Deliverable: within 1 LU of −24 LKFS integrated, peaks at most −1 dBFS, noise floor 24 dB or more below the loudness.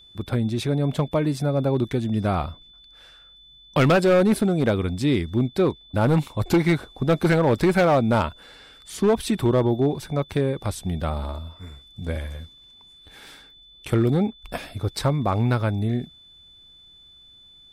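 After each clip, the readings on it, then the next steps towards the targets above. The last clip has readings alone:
share of clipped samples 1.4%; peaks flattened at −13.0 dBFS; interfering tone 3,500 Hz; level of the tone −48 dBFS; integrated loudness −22.5 LKFS; sample peak −13.0 dBFS; target loudness −24.0 LKFS
→ clipped peaks rebuilt −13 dBFS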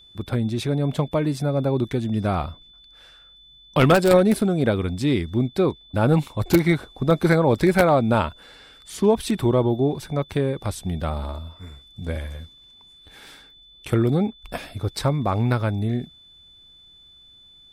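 share of clipped samples 0.0%; interfering tone 3,500 Hz; level of the tone −48 dBFS
→ notch filter 3,500 Hz, Q 30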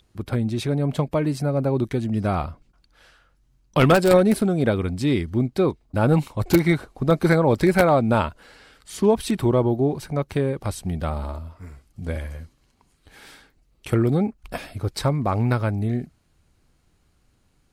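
interfering tone none found; integrated loudness −22.0 LKFS; sample peak −4.0 dBFS; target loudness −24.0 LKFS
→ level −2 dB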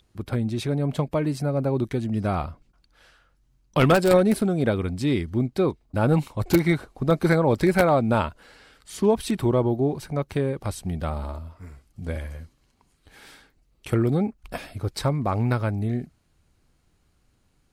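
integrated loudness −24.0 LKFS; sample peak −6.0 dBFS; background noise floor −66 dBFS

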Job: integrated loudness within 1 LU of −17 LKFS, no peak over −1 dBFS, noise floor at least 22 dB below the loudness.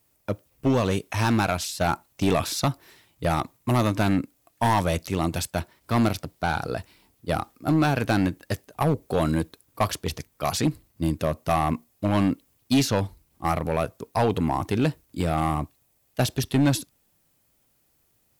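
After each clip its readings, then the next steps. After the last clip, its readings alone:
share of clipped samples 1.6%; peaks flattened at −15.0 dBFS; integrated loudness −26.0 LKFS; sample peak −15.0 dBFS; target loudness −17.0 LKFS
→ clipped peaks rebuilt −15 dBFS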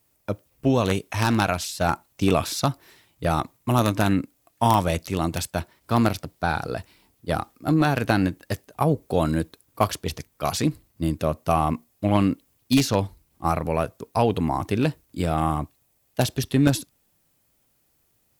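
share of clipped samples 0.0%; integrated loudness −24.5 LKFS; sample peak −6.0 dBFS; target loudness −17.0 LKFS
→ level +7.5 dB
brickwall limiter −1 dBFS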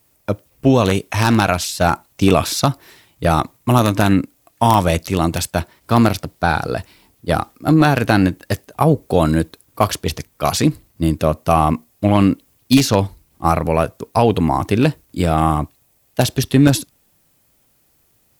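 integrated loudness −17.5 LKFS; sample peak −1.0 dBFS; background noise floor −60 dBFS

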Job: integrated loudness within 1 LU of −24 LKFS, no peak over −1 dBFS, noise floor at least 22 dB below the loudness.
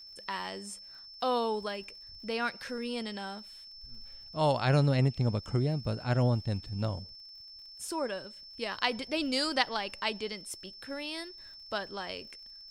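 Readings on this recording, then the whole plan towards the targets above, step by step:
crackle rate 59 per second; interfering tone 5,300 Hz; level of the tone −47 dBFS; integrated loudness −32.5 LKFS; sample peak −10.0 dBFS; target loudness −24.0 LKFS
→ click removal
notch filter 5,300 Hz, Q 30
level +8.5 dB

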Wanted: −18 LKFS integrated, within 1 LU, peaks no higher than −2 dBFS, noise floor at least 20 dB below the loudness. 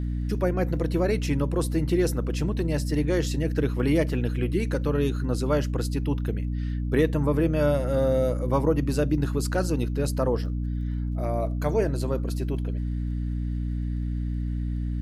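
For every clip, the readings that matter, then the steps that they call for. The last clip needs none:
crackle rate 24 per second; mains hum 60 Hz; hum harmonics up to 300 Hz; level of the hum −25 dBFS; integrated loudness −26.5 LKFS; sample peak −10.0 dBFS; target loudness −18.0 LKFS
→ click removal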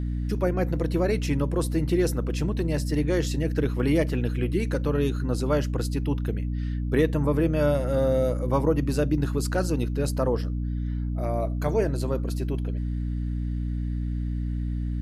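crackle rate 0 per second; mains hum 60 Hz; hum harmonics up to 300 Hz; level of the hum −25 dBFS
→ hum removal 60 Hz, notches 5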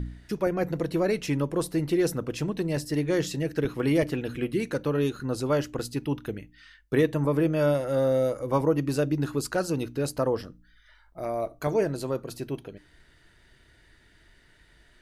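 mains hum none found; integrated loudness −27.5 LKFS; sample peak −12.0 dBFS; target loudness −18.0 LKFS
→ level +9.5 dB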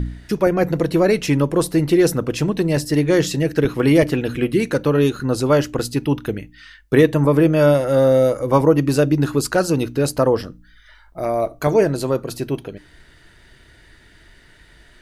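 integrated loudness −18.0 LKFS; sample peak −2.5 dBFS; background noise floor −50 dBFS

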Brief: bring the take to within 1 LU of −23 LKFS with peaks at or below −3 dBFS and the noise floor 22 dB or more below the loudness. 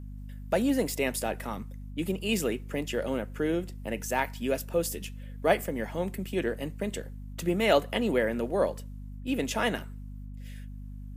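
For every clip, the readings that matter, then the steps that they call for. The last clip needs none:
mains hum 50 Hz; hum harmonics up to 250 Hz; level of the hum −38 dBFS; integrated loudness −30.0 LKFS; sample peak −9.0 dBFS; target loudness −23.0 LKFS
→ mains-hum notches 50/100/150/200/250 Hz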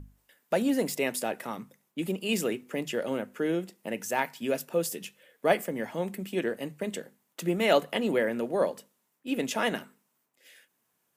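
mains hum none found; integrated loudness −30.0 LKFS; sample peak −9.0 dBFS; target loudness −23.0 LKFS
→ level +7 dB
brickwall limiter −3 dBFS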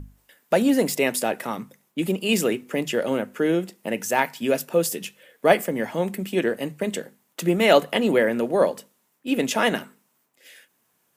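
integrated loudness −23.0 LKFS; sample peak −3.0 dBFS; background noise floor −69 dBFS

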